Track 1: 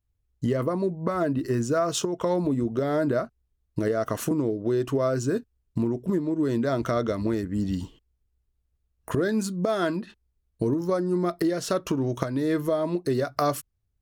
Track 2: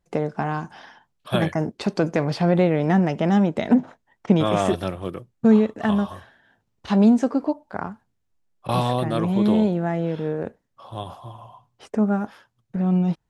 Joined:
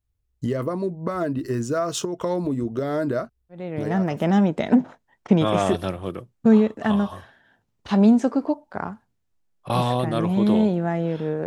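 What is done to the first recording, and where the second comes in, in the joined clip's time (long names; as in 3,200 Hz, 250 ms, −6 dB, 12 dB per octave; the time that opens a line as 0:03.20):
track 1
0:03.89: continue with track 2 from 0:02.88, crossfade 0.80 s linear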